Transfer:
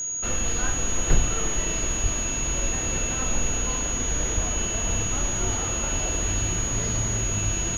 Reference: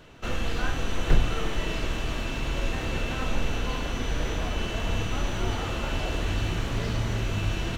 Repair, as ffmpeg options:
-filter_complex "[0:a]bandreject=f=6.7k:w=30,asplit=3[a][b][c];[a]afade=t=out:st=2.02:d=0.02[d];[b]highpass=f=140:w=0.5412,highpass=f=140:w=1.3066,afade=t=in:st=2.02:d=0.02,afade=t=out:st=2.14:d=0.02[e];[c]afade=t=in:st=2.14:d=0.02[f];[d][e][f]amix=inputs=3:normalize=0,asplit=3[g][h][i];[g]afade=t=out:st=4.34:d=0.02[j];[h]highpass=f=140:w=0.5412,highpass=f=140:w=1.3066,afade=t=in:st=4.34:d=0.02,afade=t=out:st=4.46:d=0.02[k];[i]afade=t=in:st=4.46:d=0.02[l];[j][k][l]amix=inputs=3:normalize=0"

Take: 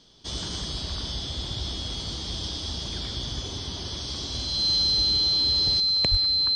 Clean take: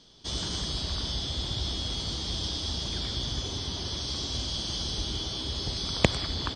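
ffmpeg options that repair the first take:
-filter_complex "[0:a]bandreject=f=4.1k:w=30,asplit=3[a][b][c];[a]afade=t=out:st=6.1:d=0.02[d];[b]highpass=f=140:w=0.5412,highpass=f=140:w=1.3066,afade=t=in:st=6.1:d=0.02,afade=t=out:st=6.22:d=0.02[e];[c]afade=t=in:st=6.22:d=0.02[f];[d][e][f]amix=inputs=3:normalize=0,asetnsamples=n=441:p=0,asendcmd='5.8 volume volume 9.5dB',volume=0dB"

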